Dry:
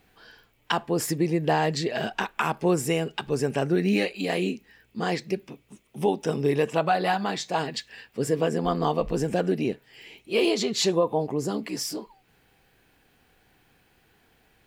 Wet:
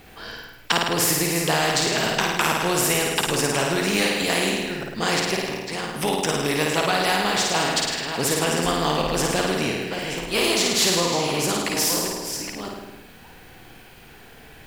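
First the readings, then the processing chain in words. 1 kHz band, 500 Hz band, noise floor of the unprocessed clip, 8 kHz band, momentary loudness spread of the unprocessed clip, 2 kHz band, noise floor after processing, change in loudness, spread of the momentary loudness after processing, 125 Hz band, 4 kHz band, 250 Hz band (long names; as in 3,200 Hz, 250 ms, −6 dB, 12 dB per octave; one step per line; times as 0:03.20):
+4.0 dB, +1.0 dB, −64 dBFS, +13.0 dB, 9 LU, +9.0 dB, −46 dBFS, +4.5 dB, 9 LU, +1.0 dB, +11.0 dB, +1.0 dB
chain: delay that plays each chunk backwards 604 ms, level −13 dB
in parallel at −6.5 dB: slack as between gear wheels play −40.5 dBFS
on the sum: flutter between parallel walls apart 9.1 metres, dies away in 0.79 s
every bin compressed towards the loudest bin 2 to 1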